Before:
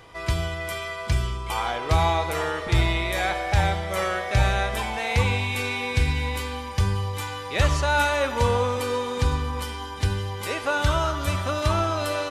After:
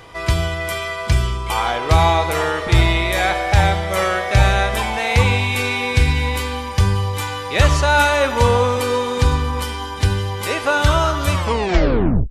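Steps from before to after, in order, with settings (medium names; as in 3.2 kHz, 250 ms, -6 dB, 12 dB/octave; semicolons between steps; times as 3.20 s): tape stop on the ending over 0.97 s; trim +7 dB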